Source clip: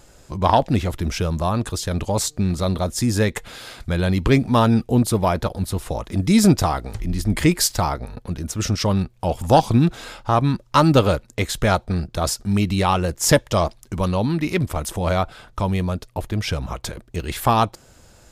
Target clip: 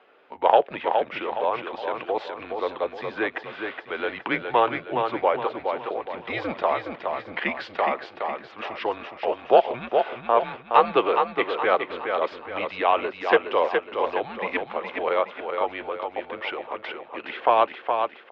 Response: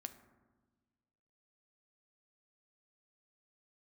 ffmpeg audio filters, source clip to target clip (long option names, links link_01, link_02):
-af "aecho=1:1:417|834|1251|1668|2085:0.531|0.223|0.0936|0.0393|0.0165,highpass=frequency=530:width_type=q:width=0.5412,highpass=frequency=530:width_type=q:width=1.307,lowpass=frequency=3100:width_type=q:width=0.5176,lowpass=frequency=3100:width_type=q:width=0.7071,lowpass=frequency=3100:width_type=q:width=1.932,afreqshift=-110"